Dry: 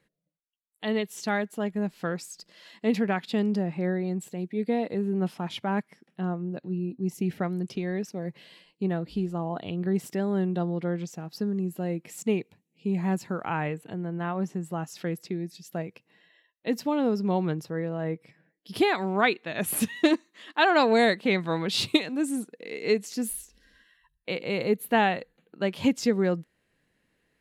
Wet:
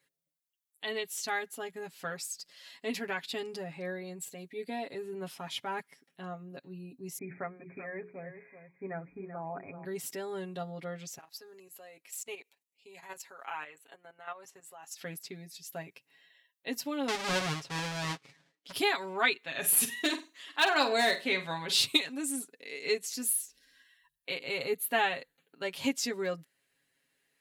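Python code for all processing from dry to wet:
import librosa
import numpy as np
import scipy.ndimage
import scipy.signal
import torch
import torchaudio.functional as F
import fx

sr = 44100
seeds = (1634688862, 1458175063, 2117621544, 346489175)

y = fx.chain(x, sr, fx.brickwall_lowpass(high_hz=2500.0),
    fx.hum_notches(base_hz=60, count=8),
    fx.echo_single(ms=384, db=-10.5), at=(7.18, 9.85))
y = fx.chain(y, sr, fx.highpass(hz=560.0, slope=12),
    fx.level_steps(step_db=11), at=(11.18, 15.01))
y = fx.chain(y, sr, fx.halfwave_hold(),
    fx.lowpass(hz=5000.0, slope=12), at=(17.08, 18.72))
y = fx.chain(y, sr, fx.clip_hard(threshold_db=-12.0),
    fx.room_flutter(wall_m=8.2, rt60_s=0.28), at=(19.47, 21.79))
y = fx.tilt_eq(y, sr, slope=3.0)
y = y + 0.83 * np.pad(y, (int(7.3 * sr / 1000.0), 0))[:len(y)]
y = y * 10.0 ** (-7.5 / 20.0)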